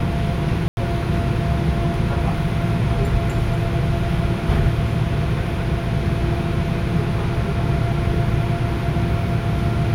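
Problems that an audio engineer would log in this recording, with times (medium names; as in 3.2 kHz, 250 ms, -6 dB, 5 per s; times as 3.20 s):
0.68–0.77 s: dropout 91 ms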